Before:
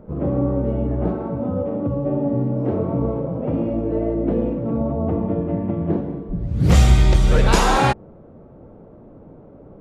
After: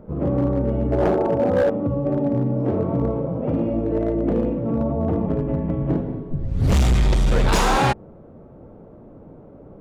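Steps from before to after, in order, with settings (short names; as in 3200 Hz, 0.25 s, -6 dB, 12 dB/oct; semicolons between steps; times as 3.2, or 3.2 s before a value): 0.92–1.7 band shelf 560 Hz +9.5 dB; 5.26–6.73 frequency shift -30 Hz; overloaded stage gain 13.5 dB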